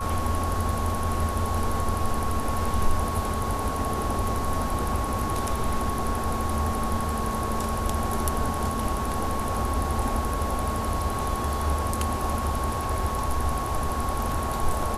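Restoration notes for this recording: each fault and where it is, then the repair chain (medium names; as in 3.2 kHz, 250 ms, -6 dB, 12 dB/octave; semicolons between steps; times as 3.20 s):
whine 1.1 kHz -31 dBFS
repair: band-stop 1.1 kHz, Q 30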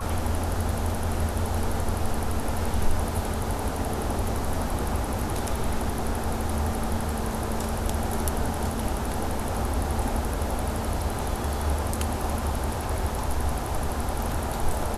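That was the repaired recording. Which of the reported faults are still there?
nothing left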